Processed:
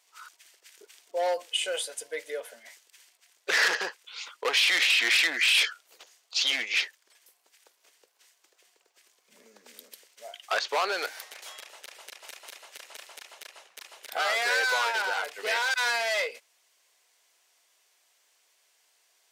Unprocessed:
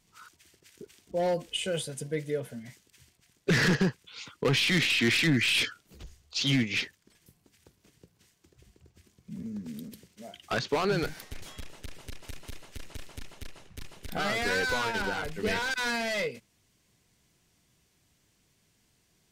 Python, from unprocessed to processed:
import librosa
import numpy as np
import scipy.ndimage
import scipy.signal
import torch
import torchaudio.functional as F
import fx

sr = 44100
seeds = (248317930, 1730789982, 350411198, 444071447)

y = scipy.signal.sosfilt(scipy.signal.butter(4, 560.0, 'highpass', fs=sr, output='sos'), x)
y = y * librosa.db_to_amplitude(4.0)